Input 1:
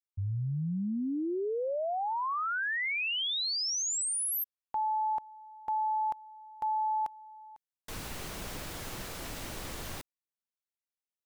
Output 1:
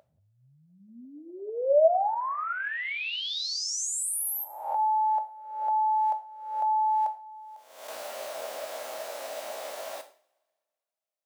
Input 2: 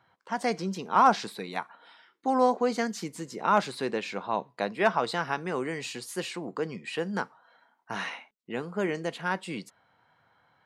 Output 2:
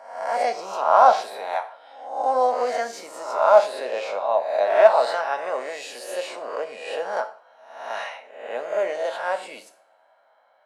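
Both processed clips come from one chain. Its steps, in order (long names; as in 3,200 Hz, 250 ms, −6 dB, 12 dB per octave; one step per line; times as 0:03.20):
peak hold with a rise ahead of every peak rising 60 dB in 0.78 s
high-pass with resonance 620 Hz, resonance Q 7.6
coupled-rooms reverb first 0.4 s, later 1.8 s, from −28 dB, DRR 7 dB
level −3.5 dB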